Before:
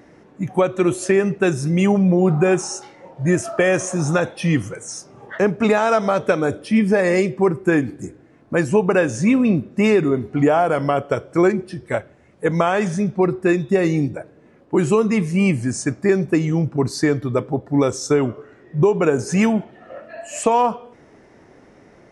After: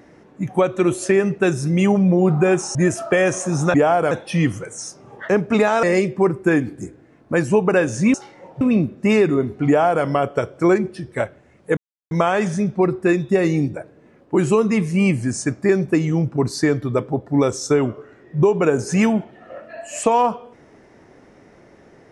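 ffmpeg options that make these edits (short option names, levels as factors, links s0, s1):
-filter_complex "[0:a]asplit=8[s0][s1][s2][s3][s4][s5][s6][s7];[s0]atrim=end=2.752[s8];[s1]atrim=start=3.218:end=4.212[s9];[s2]atrim=start=10.408:end=10.782[s10];[s3]atrim=start=4.208:end=5.932[s11];[s4]atrim=start=7.038:end=9.352[s12];[s5]atrim=start=2.748:end=3.222[s13];[s6]atrim=start=9.348:end=12.51,asetpts=PTS-STARTPTS,afade=t=out:st=3.158:d=0.004:c=hsin,apad=pad_dur=0.34[s14];[s7]atrim=start=12.51,asetpts=PTS-STARTPTS,afade=t=in:d=0.004:c=hsin[s15];[s8][s9]acrossfade=d=0.004:c1=hsin:c2=hsin[s16];[s16][s10]acrossfade=d=0.004:c1=hsin:c2=hsin[s17];[s17][s11]acrossfade=d=0.004:c1=hsin:c2=hsin[s18];[s18][s12]acrossfade=d=0.004:c1=hsin:c2=hsin[s19];[s19][s13]acrossfade=d=0.004:c1=hsin:c2=hsin[s20];[s14][s15]concat=n=2:v=0:a=1[s21];[s20][s21]acrossfade=d=0.004:c1=hsin:c2=hsin"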